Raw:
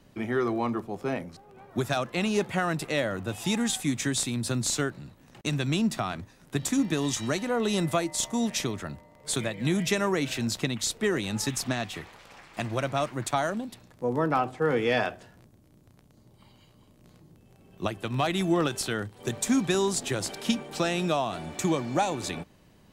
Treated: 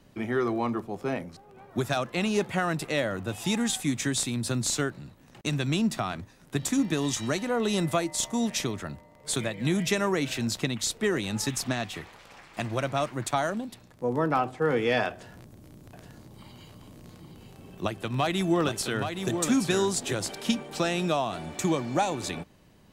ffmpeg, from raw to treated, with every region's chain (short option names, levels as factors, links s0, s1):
-filter_complex "[0:a]asettb=1/sr,asplit=3[s0][s1][s2];[s0]atrim=end=15.114[s3];[s1]atrim=start=15.11:end=20.14,asetpts=PTS-STARTPTS,afade=t=in:d=0.004:c=qsin,afade=t=out:st=5.026:d=0.004:c=qsin,acompressor=mode=upward:threshold=0.0126:ratio=2.5:attack=3.2:release=140:knee=2.83:detection=peak,aecho=1:1:822:0.473,atrim=end_sample=221823[s4];[s2]atrim=start=20.136[s5];[s3][s4]acrossfade=d=0.004:c1=hsin:c2=qsin[s6];[s6][s5]acrossfade=d=0.004:c1=qsin:c2=hsin"